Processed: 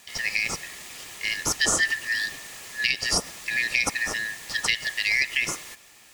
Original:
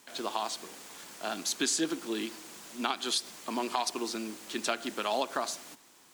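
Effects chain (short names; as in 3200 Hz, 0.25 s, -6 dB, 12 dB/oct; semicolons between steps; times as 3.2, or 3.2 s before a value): four-band scrambler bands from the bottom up 4123; gain +7 dB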